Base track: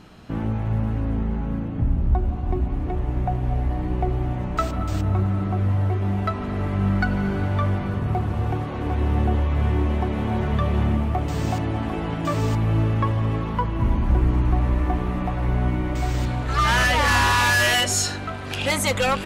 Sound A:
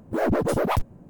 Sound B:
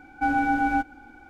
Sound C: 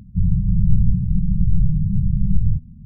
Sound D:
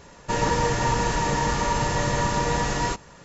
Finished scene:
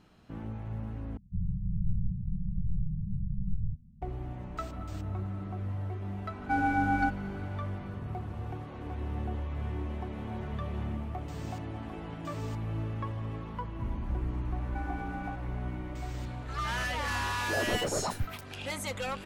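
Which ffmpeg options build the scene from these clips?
ffmpeg -i bed.wav -i cue0.wav -i cue1.wav -i cue2.wav -filter_complex "[2:a]asplit=2[link_01][link_02];[0:a]volume=-14dB[link_03];[link_02]acompressor=threshold=-28dB:ratio=6:attack=3.2:release=140:knee=1:detection=peak[link_04];[1:a]acrossover=split=250|1800[link_05][link_06][link_07];[link_05]adelay=80[link_08];[link_07]adelay=270[link_09];[link_08][link_06][link_09]amix=inputs=3:normalize=0[link_10];[link_03]asplit=2[link_11][link_12];[link_11]atrim=end=1.174[link_13];[3:a]atrim=end=2.85,asetpts=PTS-STARTPTS,volume=-15dB[link_14];[link_12]atrim=start=4.016[link_15];[link_01]atrim=end=1.29,asetpts=PTS-STARTPTS,volume=-5dB,afade=type=in:duration=0.004:curve=hsin,afade=type=out:start_time=1.286:duration=0.004:curve=hsin,adelay=6280[link_16];[link_04]atrim=end=1.29,asetpts=PTS-STARTPTS,volume=-9dB,afade=type=in:duration=0.004:curve=hsin,afade=type=out:start_time=1.286:duration=0.004:curve=hsin,adelay=14540[link_17];[link_10]atrim=end=1.09,asetpts=PTS-STARTPTS,volume=-8.5dB,afade=type=in:duration=0.004:curve=hsin,afade=type=out:start_time=1.086:duration=0.004:curve=hsin,adelay=17350[link_18];[link_13][link_14]acrossfade=duration=0.004:curve1=hsin:curve2=hsin[link_19];[link_19][link_15]acrossfade=duration=0.004:curve1=hsin:curve2=hsin[link_20];[link_20][link_16][link_17][link_18]amix=inputs=4:normalize=0" out.wav

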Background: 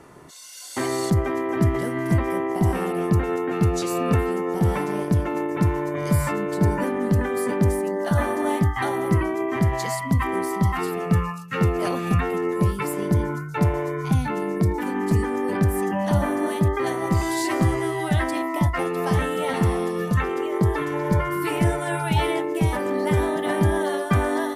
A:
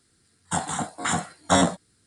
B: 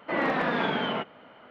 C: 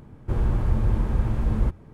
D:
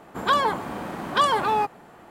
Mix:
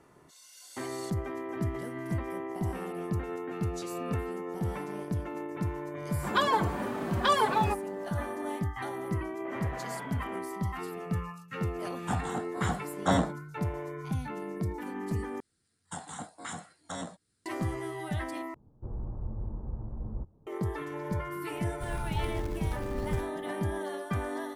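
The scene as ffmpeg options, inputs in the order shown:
ffmpeg -i bed.wav -i cue0.wav -i cue1.wav -i cue2.wav -i cue3.wav -filter_complex "[1:a]asplit=2[link_01][link_02];[3:a]asplit=2[link_03][link_04];[0:a]volume=-12dB[link_05];[4:a]asplit=2[link_06][link_07];[link_07]adelay=4.1,afreqshift=2.1[link_08];[link_06][link_08]amix=inputs=2:normalize=1[link_09];[2:a]lowpass=2500[link_10];[link_01]lowpass=frequency=2300:poles=1[link_11];[link_02]alimiter=limit=-16dB:level=0:latency=1:release=276[link_12];[link_03]lowpass=frequency=1000:width=0.5412,lowpass=frequency=1000:width=1.3066[link_13];[link_04]acrusher=bits=4:mode=log:mix=0:aa=0.000001[link_14];[link_05]asplit=3[link_15][link_16][link_17];[link_15]atrim=end=15.404[link_18];[link_12]atrim=end=2.06,asetpts=PTS-STARTPTS,volume=-12dB[link_19];[link_16]atrim=start=17.456:end=18.544[link_20];[link_13]atrim=end=1.93,asetpts=PTS-STARTPTS,volume=-14.5dB[link_21];[link_17]atrim=start=20.466[link_22];[link_09]atrim=end=2.1,asetpts=PTS-STARTPTS,volume=-1dB,afade=type=in:duration=0.004:curve=hsin,afade=type=out:start_time=2.096:duration=0.004:curve=hsin,adelay=6080[link_23];[link_10]atrim=end=1.5,asetpts=PTS-STARTPTS,volume=-16dB,afade=type=in:duration=0.004:curve=hsin,afade=type=out:start_time=1.496:duration=0.004:curve=hsin,adelay=9360[link_24];[link_11]atrim=end=2.06,asetpts=PTS-STARTPTS,volume=-6dB,afade=type=in:duration=0.004:curve=hsin,afade=type=out:start_time=2.056:duration=0.004:curve=hsin,adelay=11560[link_25];[link_14]atrim=end=1.93,asetpts=PTS-STARTPTS,volume=-14dB,afade=type=in:duration=0.004:curve=hsin,afade=type=out:start_time=1.926:duration=0.004:curve=hsin,adelay=21520[link_26];[link_18][link_19]acrossfade=duration=0.004:curve1=hsin:curve2=hsin[link_27];[link_27][link_20]acrossfade=duration=0.004:curve1=hsin:curve2=hsin[link_28];[link_28][link_21]acrossfade=duration=0.004:curve1=hsin:curve2=hsin[link_29];[link_29][link_22]acrossfade=duration=0.004:curve1=hsin:curve2=hsin[link_30];[link_30][link_23][link_24][link_25][link_26]amix=inputs=5:normalize=0" out.wav

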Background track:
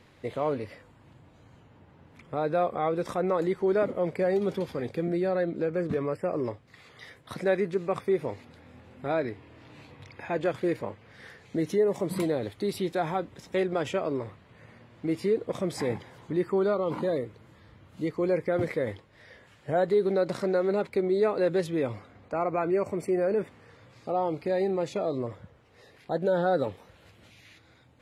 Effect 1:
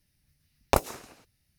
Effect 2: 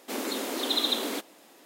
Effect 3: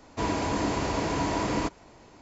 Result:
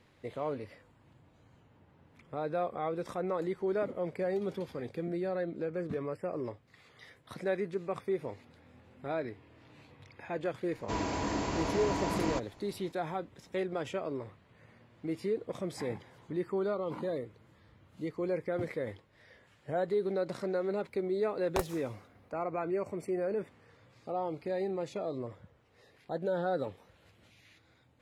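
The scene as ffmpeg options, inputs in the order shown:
ffmpeg -i bed.wav -i cue0.wav -i cue1.wav -i cue2.wav -filter_complex "[0:a]volume=-7dB[link_01];[3:a]atrim=end=2.21,asetpts=PTS-STARTPTS,volume=-5.5dB,afade=type=in:duration=0.004:curve=hsin,afade=type=out:start_time=2.206:duration=0.004:curve=hsin,adelay=10710[link_02];[1:a]atrim=end=1.58,asetpts=PTS-STARTPTS,volume=-10.5dB,afade=type=in:duration=0.004:curve=hsin,afade=type=out:start_time=1.576:duration=0.004:curve=hsin,adelay=20830[link_03];[link_01][link_02][link_03]amix=inputs=3:normalize=0" out.wav

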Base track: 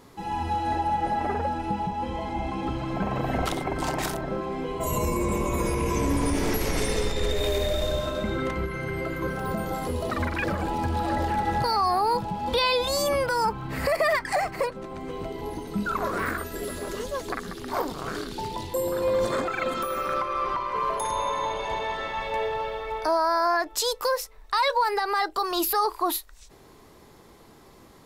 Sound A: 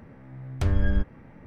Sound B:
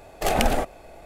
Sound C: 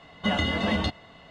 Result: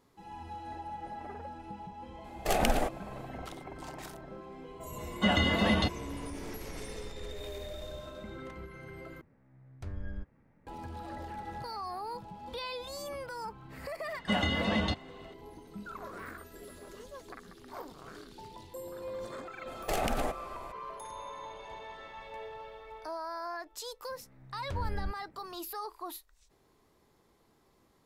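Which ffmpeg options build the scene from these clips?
ffmpeg -i bed.wav -i cue0.wav -i cue1.wav -i cue2.wav -filter_complex "[2:a]asplit=2[link_01][link_02];[3:a]asplit=2[link_03][link_04];[1:a]asplit=2[link_05][link_06];[0:a]volume=-16dB[link_07];[link_01]dynaudnorm=framelen=120:gausssize=3:maxgain=4dB[link_08];[link_05]equalizer=frequency=3100:width_type=o:width=0.35:gain=-4.5[link_09];[link_02]acompressor=threshold=-25dB:ratio=6:attack=3.2:release=140:knee=1:detection=peak[link_10];[link_07]asplit=2[link_11][link_12];[link_11]atrim=end=9.214[link_13];[link_09]atrim=end=1.46,asetpts=PTS-STARTPTS,volume=-17dB[link_14];[link_12]atrim=start=10.666[link_15];[link_08]atrim=end=1.05,asetpts=PTS-STARTPTS,volume=-8dB,afade=type=in:duration=0.004:curve=hsin,afade=type=out:start_time=1.046:duration=0.004:curve=hsin,adelay=2240[link_16];[link_03]atrim=end=1.3,asetpts=PTS-STARTPTS,volume=-1dB,afade=type=in:duration=0.004:curve=hsin,afade=type=out:start_time=1.296:duration=0.004:curve=hsin,adelay=4980[link_17];[link_04]atrim=end=1.3,asetpts=PTS-STARTPTS,volume=-4dB,afade=type=in:duration=0.004:curve=hsin,afade=type=out:start_time=1.296:duration=0.004:curve=hsin,adelay=14040[link_18];[link_10]atrim=end=1.05,asetpts=PTS-STARTPTS,volume=-1.5dB,afade=type=in:duration=0.004:curve=hsin,afade=type=out:start_time=1.046:duration=0.004:curve=hsin,adelay=19670[link_19];[link_06]atrim=end=1.46,asetpts=PTS-STARTPTS,volume=-13dB,afade=type=in:duration=0.004:curve=hsin,afade=type=out:start_time=1.456:duration=0.004:curve=hsin,adelay=24090[link_20];[link_13][link_14]acrossfade=duration=0.004:curve1=hsin:curve2=hsin[link_21];[link_21][link_15]acrossfade=duration=0.004:curve1=hsin:curve2=hsin[link_22];[link_22][link_16][link_17][link_18][link_19][link_20]amix=inputs=6:normalize=0" out.wav

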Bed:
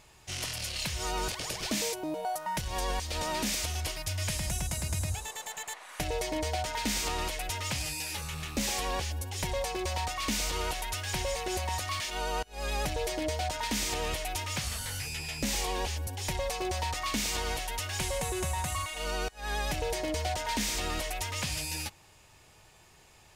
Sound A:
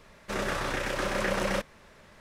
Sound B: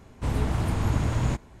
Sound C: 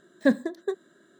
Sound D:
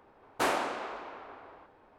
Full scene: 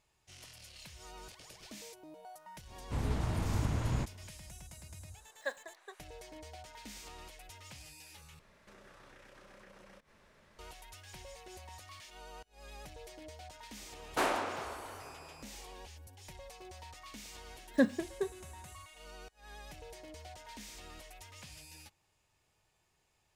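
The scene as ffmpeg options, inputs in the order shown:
ffmpeg -i bed.wav -i cue0.wav -i cue1.wav -i cue2.wav -i cue3.wav -filter_complex "[3:a]asplit=2[link_01][link_02];[0:a]volume=-18dB[link_03];[link_01]highpass=frequency=650:width=0.5412,highpass=frequency=650:width=1.3066[link_04];[1:a]acompressor=threshold=-46dB:ratio=6:attack=3.2:release=140:knee=1:detection=peak[link_05];[link_03]asplit=2[link_06][link_07];[link_06]atrim=end=8.394[link_08];[link_05]atrim=end=2.2,asetpts=PTS-STARTPTS,volume=-9.5dB[link_09];[link_07]atrim=start=10.586[link_10];[2:a]atrim=end=1.6,asetpts=PTS-STARTPTS,volume=-8dB,afade=type=in:duration=0.004:curve=hsin,afade=type=out:start_time=1.596:duration=0.004:curve=hsin,adelay=2690[link_11];[link_04]atrim=end=1.19,asetpts=PTS-STARTPTS,volume=-8.5dB,afade=type=in:duration=0.004:curve=hsin,afade=type=out:start_time=1.186:duration=0.004:curve=hsin,adelay=5200[link_12];[4:a]atrim=end=1.98,asetpts=PTS-STARTPTS,volume=-2.5dB,afade=type=in:duration=0.004:curve=hsin,afade=type=out:start_time=1.976:duration=0.004:curve=hsin,adelay=13770[link_13];[link_02]atrim=end=1.19,asetpts=PTS-STARTPTS,volume=-6dB,afade=type=in:duration=0.004:curve=hsin,afade=type=out:start_time=1.186:duration=0.004:curve=hsin,adelay=17530[link_14];[link_08][link_09]acrossfade=duration=0.004:curve1=hsin:curve2=hsin[link_15];[link_15][link_10]acrossfade=duration=0.004:curve1=hsin:curve2=hsin[link_16];[link_16][link_11][link_12][link_13][link_14]amix=inputs=5:normalize=0" out.wav

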